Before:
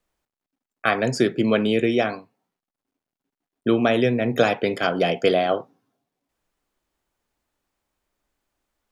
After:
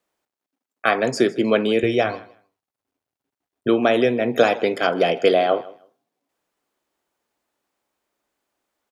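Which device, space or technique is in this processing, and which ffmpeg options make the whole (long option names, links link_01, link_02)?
filter by subtraction: -filter_complex "[0:a]asplit=2[link_01][link_02];[link_02]lowpass=430,volume=-1[link_03];[link_01][link_03]amix=inputs=2:normalize=0,asettb=1/sr,asplit=3[link_04][link_05][link_06];[link_04]atrim=end=1.834[link_07];[link_05]atrim=start=1.83:end=3.68,asetpts=PTS-STARTPTS,afade=type=in:duration=0.004:curve=qsin,afade=type=out:start_time=1.846:duration=0.004:curve=qsin,lowshelf=frequency=140:width_type=q:width=1.5:gain=11.5[link_08];[link_06]atrim=start=3.676[link_09];[link_07][link_08]acrossfade=duration=0.004:curve1=hsin:curve2=qsin[link_10];[link_10][link_09]acrossfade=duration=0.004:curve1=qsin:curve2=hsin,aecho=1:1:157|314:0.1|0.018,volume=1dB"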